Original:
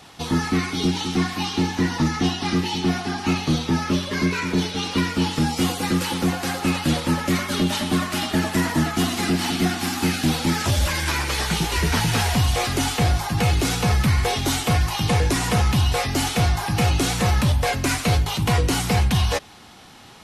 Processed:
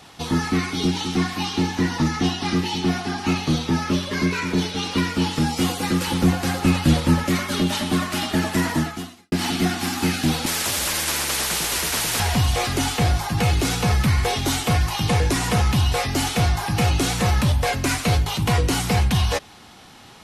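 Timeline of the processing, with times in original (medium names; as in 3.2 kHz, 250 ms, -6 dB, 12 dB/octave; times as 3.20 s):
6.07–7.24 s: bass shelf 180 Hz +9.5 dB
8.75–9.32 s: fade out quadratic
10.46–12.20 s: spectrum-flattening compressor 4:1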